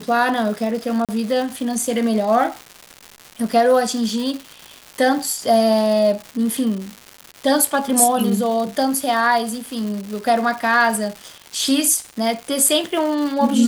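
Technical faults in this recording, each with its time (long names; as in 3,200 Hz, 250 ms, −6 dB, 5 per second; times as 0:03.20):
surface crackle 290 per second −26 dBFS
0:01.05–0:01.09: drop-out 37 ms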